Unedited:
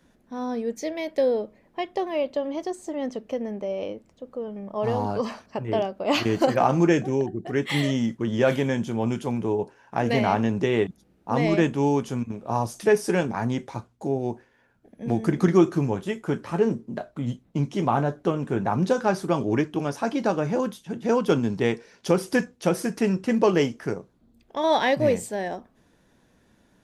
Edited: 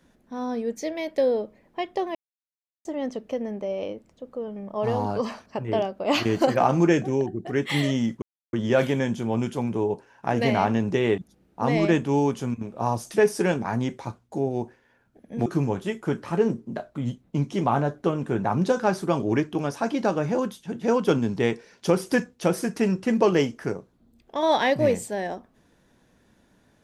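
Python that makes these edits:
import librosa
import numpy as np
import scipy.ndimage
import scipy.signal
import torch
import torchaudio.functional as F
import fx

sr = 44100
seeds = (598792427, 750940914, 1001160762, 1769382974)

y = fx.edit(x, sr, fx.silence(start_s=2.15, length_s=0.7),
    fx.insert_silence(at_s=8.22, length_s=0.31),
    fx.cut(start_s=15.15, length_s=0.52), tone=tone)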